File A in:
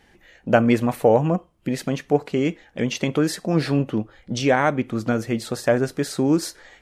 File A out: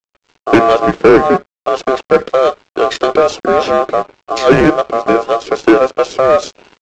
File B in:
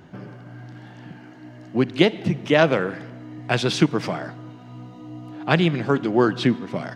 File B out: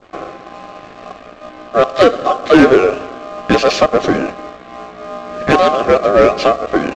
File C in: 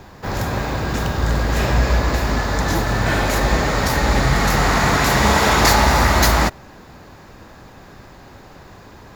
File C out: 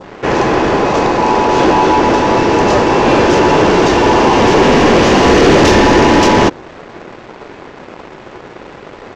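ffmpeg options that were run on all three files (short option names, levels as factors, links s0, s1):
-filter_complex "[0:a]aeval=exprs='val(0)*sin(2*PI*920*n/s)':c=same,asplit=2[s0][s1];[s1]highpass=f=720:p=1,volume=5.62,asoftclip=type=tanh:threshold=0.891[s2];[s0][s2]amix=inputs=2:normalize=0,lowpass=f=3900:p=1,volume=0.501,adynamicsmooth=sensitivity=6.5:basefreq=2700,lowshelf=f=600:t=q:w=1.5:g=13,aresample=16000,aeval=exprs='sgn(val(0))*max(abs(val(0))-0.00944,0)':c=same,aresample=44100,adynamicequalizer=threshold=0.0398:dfrequency=2200:dqfactor=0.99:tfrequency=2200:tqfactor=0.99:attack=5:release=100:ratio=0.375:range=2:mode=cutabove:tftype=bell,acontrast=61,volume=0.891"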